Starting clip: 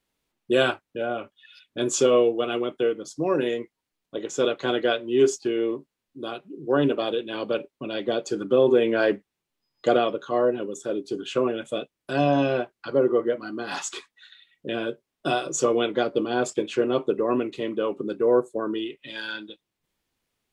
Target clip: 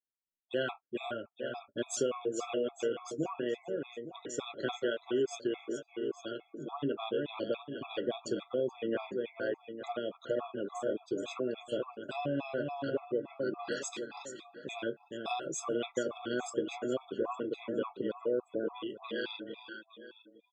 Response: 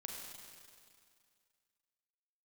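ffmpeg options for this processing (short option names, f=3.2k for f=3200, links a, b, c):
-af "aecho=1:1:429|858|1287|1716|2145:0.398|0.171|0.0736|0.0317|0.0136,acompressor=threshold=-23dB:ratio=5,afftdn=nr=23:nf=-50,afftfilt=real='re*gt(sin(2*PI*3.5*pts/sr)*(1-2*mod(floor(b*sr/1024/670),2)),0)':imag='im*gt(sin(2*PI*3.5*pts/sr)*(1-2*mod(floor(b*sr/1024/670),2)),0)':win_size=1024:overlap=0.75,volume=-4.5dB"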